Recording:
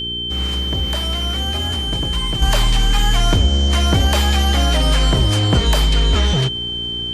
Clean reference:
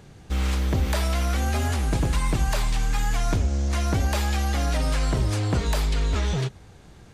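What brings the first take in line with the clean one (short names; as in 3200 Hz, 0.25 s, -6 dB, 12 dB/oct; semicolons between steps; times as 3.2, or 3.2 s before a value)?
de-hum 59.2 Hz, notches 7; notch 3100 Hz, Q 30; gain 0 dB, from 2.42 s -8 dB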